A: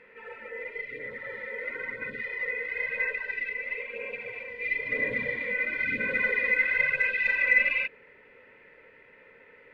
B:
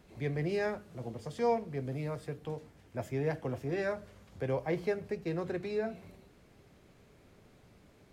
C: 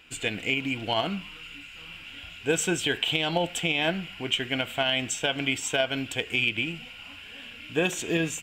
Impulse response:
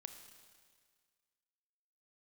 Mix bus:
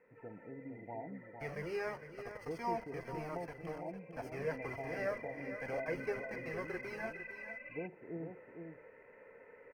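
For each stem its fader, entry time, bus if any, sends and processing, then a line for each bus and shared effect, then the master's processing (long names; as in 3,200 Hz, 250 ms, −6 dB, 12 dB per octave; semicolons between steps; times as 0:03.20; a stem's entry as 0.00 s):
0:04.27 −17.5 dB → 0:04.55 −7.5 dB, 0.00 s, send −4 dB, no echo send, parametric band 640 Hz +7 dB 1.6 octaves; downward compressor 12 to 1, threshold −36 dBFS, peak gain reduction 20.5 dB
+0.5 dB, 1.20 s, send −7 dB, echo send −9 dB, spectral tilt +4 dB per octave; bit reduction 7 bits; flanger whose copies keep moving one way falling 1.4 Hz
−16.5 dB, 0.00 s, no send, echo send −6 dB, brick-wall band-pass 100–960 Hz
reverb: on, RT60 1.8 s, pre-delay 26 ms
echo: single-tap delay 457 ms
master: moving average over 12 samples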